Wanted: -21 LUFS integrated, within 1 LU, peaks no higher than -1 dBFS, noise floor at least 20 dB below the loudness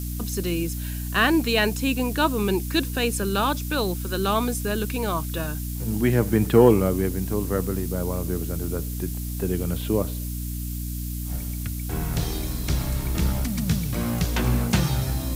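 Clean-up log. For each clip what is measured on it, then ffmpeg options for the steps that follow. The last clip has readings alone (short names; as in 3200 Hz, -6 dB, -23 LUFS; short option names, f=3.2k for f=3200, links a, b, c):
hum 60 Hz; harmonics up to 300 Hz; hum level -28 dBFS; noise floor -30 dBFS; noise floor target -45 dBFS; loudness -24.5 LUFS; peak -4.0 dBFS; loudness target -21.0 LUFS
-> -af "bandreject=f=60:t=h:w=4,bandreject=f=120:t=h:w=4,bandreject=f=180:t=h:w=4,bandreject=f=240:t=h:w=4,bandreject=f=300:t=h:w=4"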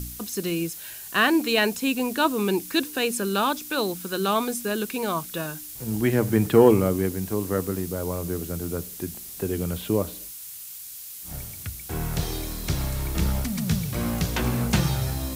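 hum none; noise floor -40 dBFS; noise floor target -46 dBFS
-> -af "afftdn=nr=6:nf=-40"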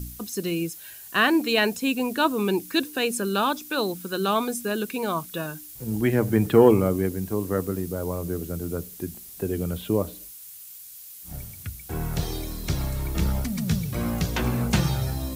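noise floor -43 dBFS; noise floor target -46 dBFS
-> -af "afftdn=nr=6:nf=-43"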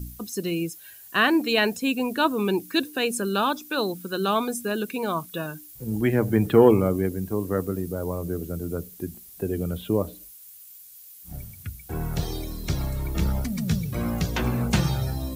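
noise floor -47 dBFS; loudness -25.5 LUFS; peak -4.5 dBFS; loudness target -21.0 LUFS
-> -af "volume=4.5dB,alimiter=limit=-1dB:level=0:latency=1"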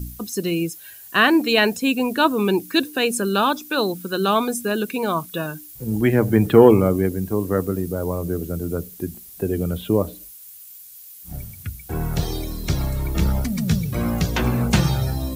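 loudness -21.0 LUFS; peak -1.0 dBFS; noise floor -42 dBFS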